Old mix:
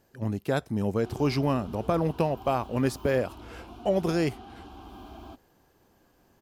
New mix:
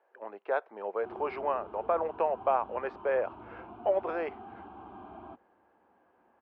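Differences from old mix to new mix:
speech: add high-pass 470 Hz 24 dB/octave; master: add cabinet simulation 140–2100 Hz, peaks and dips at 270 Hz -6 dB, 910 Hz +3 dB, 1.9 kHz -4 dB

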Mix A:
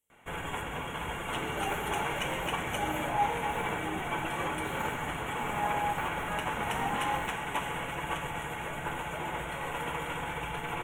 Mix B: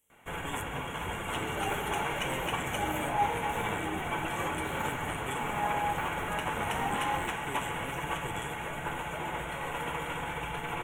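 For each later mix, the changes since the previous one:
speech +8.5 dB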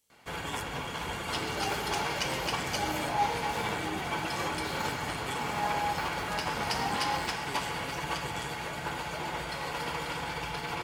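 speech: send -9.5 dB; first sound: add high-pass 46 Hz; master: remove Butterworth band-stop 4.8 kHz, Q 1.2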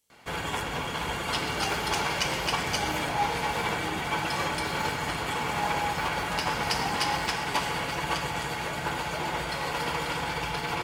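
first sound +4.5 dB

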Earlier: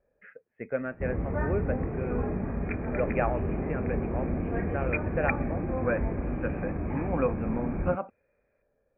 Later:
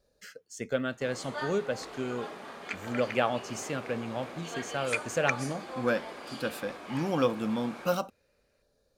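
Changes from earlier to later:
first sound: add high-pass 790 Hz 12 dB/octave; master: remove rippled Chebyshev low-pass 2.5 kHz, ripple 3 dB

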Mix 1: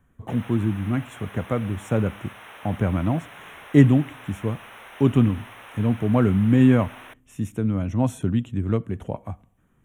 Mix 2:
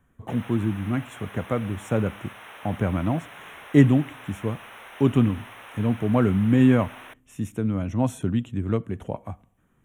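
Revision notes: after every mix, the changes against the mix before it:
master: add bass shelf 180 Hz -3.5 dB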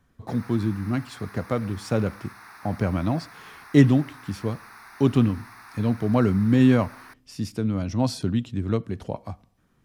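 background: add static phaser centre 1.3 kHz, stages 4; master: remove Butterworth band-stop 4.7 kHz, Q 1.4

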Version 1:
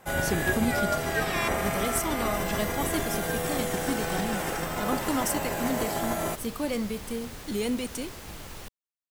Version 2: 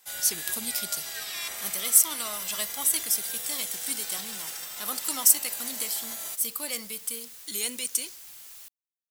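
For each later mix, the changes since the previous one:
speech +11.5 dB; first sound: add peaking EQ 4.2 kHz +8.5 dB 1.1 oct; master: add pre-emphasis filter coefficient 0.97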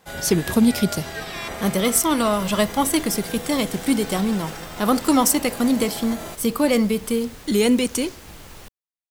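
first sound -5.5 dB; master: remove pre-emphasis filter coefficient 0.97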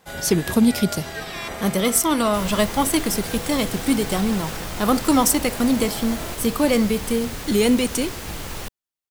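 second sound +10.0 dB

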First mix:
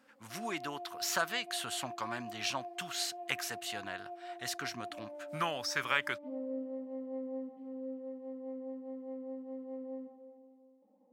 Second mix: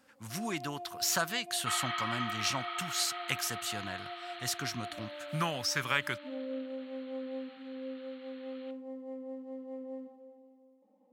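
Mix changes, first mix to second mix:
speech: add tone controls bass +11 dB, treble +6 dB; first sound: remove low-pass 1.3 kHz 6 dB/octave; second sound: unmuted

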